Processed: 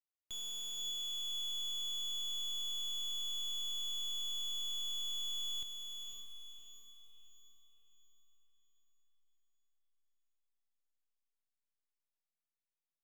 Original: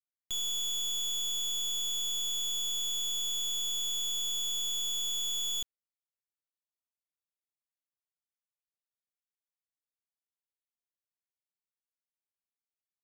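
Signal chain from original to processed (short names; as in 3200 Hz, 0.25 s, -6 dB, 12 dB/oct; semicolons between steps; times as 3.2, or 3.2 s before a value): high shelf 7300 Hz -5.5 dB; on a send: diffused feedback echo 0.554 s, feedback 44%, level -5.5 dB; on the sum: gain -8 dB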